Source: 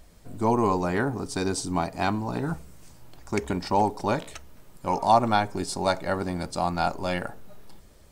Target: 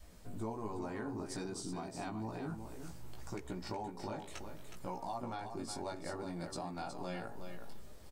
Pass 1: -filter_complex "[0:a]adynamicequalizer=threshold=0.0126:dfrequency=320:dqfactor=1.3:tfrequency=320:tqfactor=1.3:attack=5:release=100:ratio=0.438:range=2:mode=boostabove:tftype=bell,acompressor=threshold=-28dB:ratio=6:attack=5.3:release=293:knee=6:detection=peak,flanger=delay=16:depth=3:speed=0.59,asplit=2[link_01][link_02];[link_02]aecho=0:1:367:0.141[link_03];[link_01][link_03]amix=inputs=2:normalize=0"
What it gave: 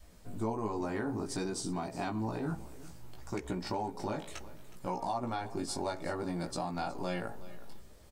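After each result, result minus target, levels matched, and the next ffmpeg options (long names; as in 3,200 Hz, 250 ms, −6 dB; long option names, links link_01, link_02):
downward compressor: peak gain reduction −6.5 dB; echo-to-direct −9.5 dB
-filter_complex "[0:a]adynamicequalizer=threshold=0.0126:dfrequency=320:dqfactor=1.3:tfrequency=320:tqfactor=1.3:attack=5:release=100:ratio=0.438:range=2:mode=boostabove:tftype=bell,acompressor=threshold=-36dB:ratio=6:attack=5.3:release=293:knee=6:detection=peak,flanger=delay=16:depth=3:speed=0.59,asplit=2[link_01][link_02];[link_02]aecho=0:1:367:0.141[link_03];[link_01][link_03]amix=inputs=2:normalize=0"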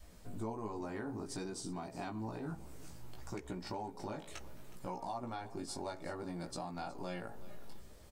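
echo-to-direct −9.5 dB
-filter_complex "[0:a]adynamicequalizer=threshold=0.0126:dfrequency=320:dqfactor=1.3:tfrequency=320:tqfactor=1.3:attack=5:release=100:ratio=0.438:range=2:mode=boostabove:tftype=bell,acompressor=threshold=-36dB:ratio=6:attack=5.3:release=293:knee=6:detection=peak,flanger=delay=16:depth=3:speed=0.59,asplit=2[link_01][link_02];[link_02]aecho=0:1:367:0.422[link_03];[link_01][link_03]amix=inputs=2:normalize=0"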